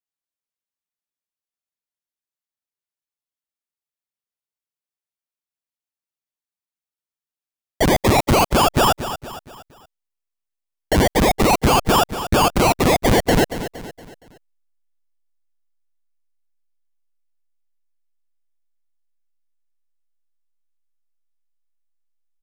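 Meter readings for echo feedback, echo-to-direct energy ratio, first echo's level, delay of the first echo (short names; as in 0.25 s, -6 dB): 44%, -11.0 dB, -12.0 dB, 0.233 s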